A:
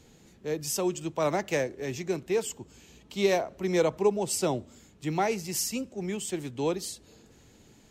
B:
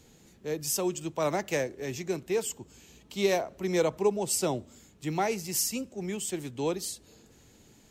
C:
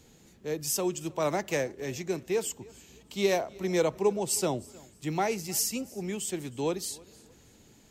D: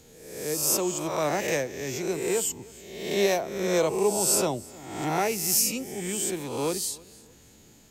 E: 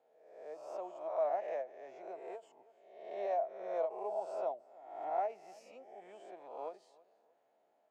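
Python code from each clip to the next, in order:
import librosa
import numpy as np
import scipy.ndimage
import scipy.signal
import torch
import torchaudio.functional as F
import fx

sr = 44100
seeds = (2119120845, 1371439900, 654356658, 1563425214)

y1 = fx.high_shelf(x, sr, hz=7700.0, db=6.5)
y1 = F.gain(torch.from_numpy(y1), -1.5).numpy()
y2 = fx.echo_feedback(y1, sr, ms=311, feedback_pct=27, wet_db=-23.5)
y3 = fx.spec_swells(y2, sr, rise_s=0.91)
y3 = fx.high_shelf(y3, sr, hz=7100.0, db=5.5)
y4 = fx.ladder_bandpass(y3, sr, hz=710.0, resonance_pct=75)
y4 = fx.end_taper(y4, sr, db_per_s=250.0)
y4 = F.gain(torch.from_numpy(y4), -3.0).numpy()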